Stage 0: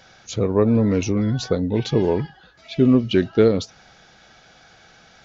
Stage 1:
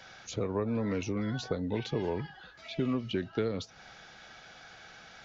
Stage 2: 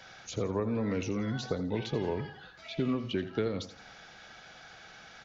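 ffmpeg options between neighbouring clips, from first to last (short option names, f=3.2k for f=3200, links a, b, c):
-filter_complex "[0:a]equalizer=f=1.8k:t=o:w=2.9:g=5.5,acrossover=split=180|760[a][b][c];[a]acompressor=threshold=-34dB:ratio=4[d];[b]acompressor=threshold=-28dB:ratio=4[e];[c]acompressor=threshold=-37dB:ratio=4[f];[d][e][f]amix=inputs=3:normalize=0,volume=-5dB"
-af "aecho=1:1:84|168|252|336:0.237|0.0854|0.0307|0.0111"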